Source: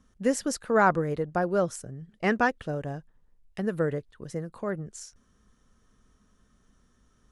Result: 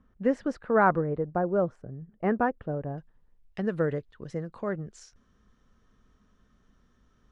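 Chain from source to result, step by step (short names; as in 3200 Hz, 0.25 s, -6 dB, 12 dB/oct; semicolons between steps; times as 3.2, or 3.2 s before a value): LPF 1900 Hz 12 dB/oct, from 1.01 s 1100 Hz, from 2.98 s 4300 Hz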